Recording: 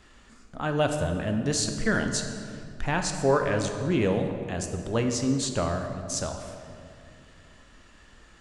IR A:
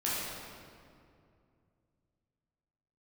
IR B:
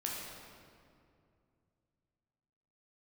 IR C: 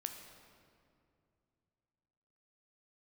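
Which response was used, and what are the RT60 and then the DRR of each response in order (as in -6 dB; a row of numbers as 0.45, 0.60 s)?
C; 2.4, 2.4, 2.5 s; -8.5, -3.5, 4.5 dB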